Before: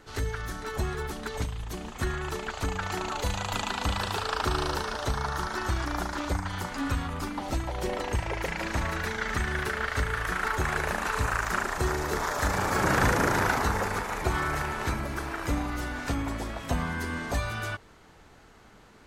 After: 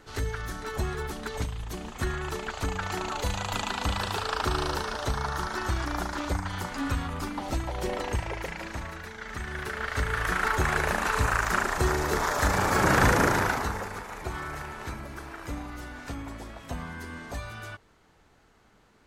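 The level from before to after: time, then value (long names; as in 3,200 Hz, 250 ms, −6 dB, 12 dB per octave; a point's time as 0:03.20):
0:08.10 0 dB
0:09.11 −10 dB
0:10.26 +2.5 dB
0:13.23 +2.5 dB
0:13.91 −7 dB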